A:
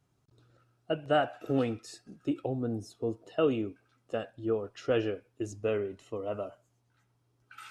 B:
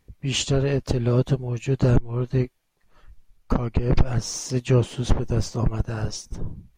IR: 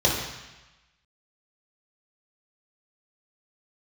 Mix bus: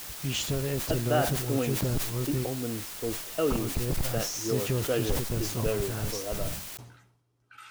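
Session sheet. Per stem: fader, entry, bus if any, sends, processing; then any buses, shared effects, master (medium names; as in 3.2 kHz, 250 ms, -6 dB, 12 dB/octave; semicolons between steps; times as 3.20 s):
-1.0 dB, 0.00 s, no send, none
-4.5 dB, 0.00 s, no send, compression 3:1, threshold -23 dBFS, peak gain reduction 10 dB; word length cut 6-bit, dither triangular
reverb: none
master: decay stretcher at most 68 dB/s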